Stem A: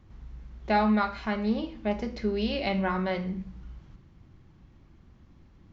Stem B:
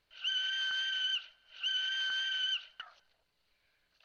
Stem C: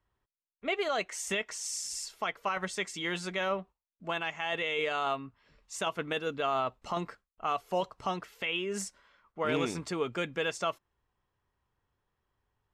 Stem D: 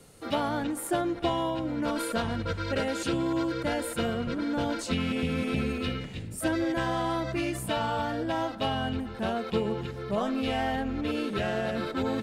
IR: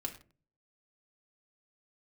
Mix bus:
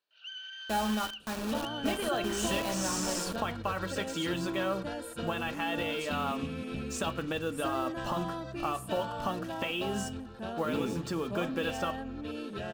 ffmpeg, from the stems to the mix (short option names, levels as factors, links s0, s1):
-filter_complex "[0:a]bandreject=f=124:t=h:w=4,bandreject=f=248:t=h:w=4,bandreject=f=372:t=h:w=4,bandreject=f=496:t=h:w=4,bandreject=f=620:t=h:w=4,bandreject=f=744:t=h:w=4,bandreject=f=868:t=h:w=4,bandreject=f=992:t=h:w=4,bandreject=f=1116:t=h:w=4,bandreject=f=1240:t=h:w=4,bandreject=f=1364:t=h:w=4,bandreject=f=1488:t=h:w=4,bandreject=f=1612:t=h:w=4,bandreject=f=1736:t=h:w=4,acrusher=bits=4:mix=0:aa=0.000001,volume=0.355,asplit=2[s0][s1];[s1]volume=0.266[s2];[1:a]highpass=290,volume=0.335[s3];[2:a]bass=f=250:g=6,treble=f=4000:g=-5,acompressor=threshold=0.0126:ratio=4,acrusher=bits=8:mix=0:aa=0.5,adelay=1200,volume=1.33,asplit=2[s4][s5];[s5]volume=0.708[s6];[3:a]adelay=1200,volume=0.376[s7];[4:a]atrim=start_sample=2205[s8];[s2][s6]amix=inputs=2:normalize=0[s9];[s9][s8]afir=irnorm=-1:irlink=0[s10];[s0][s3][s4][s7][s10]amix=inputs=5:normalize=0,bandreject=f=2100:w=5.9"